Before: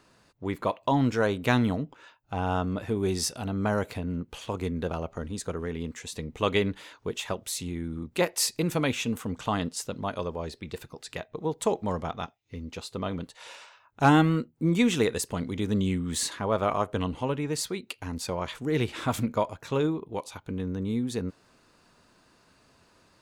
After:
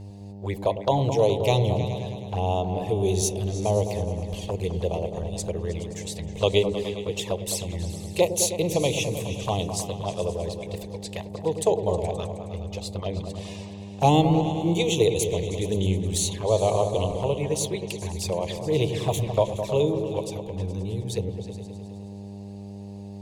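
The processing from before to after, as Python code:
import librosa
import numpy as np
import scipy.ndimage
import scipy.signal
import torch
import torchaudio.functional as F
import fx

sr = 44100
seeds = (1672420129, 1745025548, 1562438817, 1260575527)

p1 = fx.fixed_phaser(x, sr, hz=580.0, stages=4)
p2 = fx.env_flanger(p1, sr, rest_ms=4.5, full_db=-29.0)
p3 = fx.dmg_buzz(p2, sr, base_hz=100.0, harmonics=9, level_db=-47.0, tilt_db=-9, odd_only=False)
p4 = p3 + fx.echo_opening(p3, sr, ms=105, hz=400, octaves=2, feedback_pct=70, wet_db=-6, dry=0)
y = p4 * librosa.db_to_amplitude(7.5)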